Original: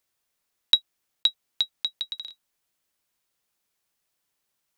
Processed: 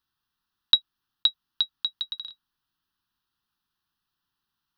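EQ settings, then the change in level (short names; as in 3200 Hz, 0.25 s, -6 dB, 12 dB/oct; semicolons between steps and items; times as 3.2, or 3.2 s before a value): bell 460 Hz -5 dB 0.94 oct; high shelf 5300 Hz -11 dB; fixed phaser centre 2200 Hz, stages 6; +4.0 dB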